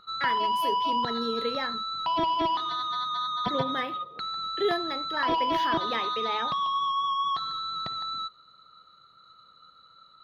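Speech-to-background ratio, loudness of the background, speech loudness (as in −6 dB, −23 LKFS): −5.0 dB, −28.5 LKFS, −33.5 LKFS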